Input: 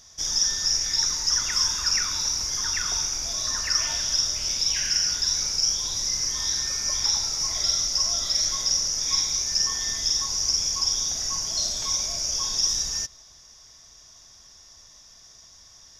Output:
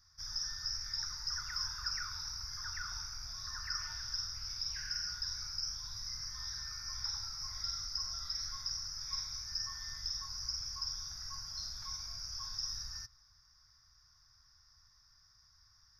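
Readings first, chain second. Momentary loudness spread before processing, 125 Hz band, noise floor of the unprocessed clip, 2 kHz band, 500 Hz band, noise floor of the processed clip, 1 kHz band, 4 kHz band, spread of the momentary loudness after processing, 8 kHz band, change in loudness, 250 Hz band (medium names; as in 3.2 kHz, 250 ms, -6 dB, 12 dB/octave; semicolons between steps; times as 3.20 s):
3 LU, -9.0 dB, -51 dBFS, -11.5 dB, under -25 dB, -67 dBFS, -11.5 dB, -14.5 dB, 4 LU, -21.0 dB, -16.0 dB, under -20 dB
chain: FFT filter 110 Hz 0 dB, 310 Hz -22 dB, 530 Hz -28 dB, 750 Hz -15 dB, 1.4 kHz +2 dB, 3.2 kHz -22 dB, 5 kHz -2 dB, 7.4 kHz -30 dB, 12 kHz -7 dB; trim -8 dB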